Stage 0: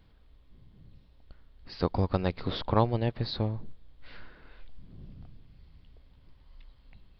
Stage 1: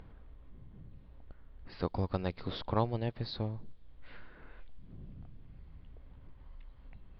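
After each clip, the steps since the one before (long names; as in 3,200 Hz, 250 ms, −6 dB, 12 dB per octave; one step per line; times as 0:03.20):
low-pass that shuts in the quiet parts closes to 1,600 Hz, open at −28 dBFS
upward compression, threshold −34 dBFS
level −6 dB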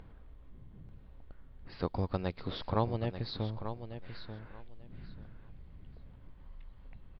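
repeating echo 889 ms, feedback 19%, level −10 dB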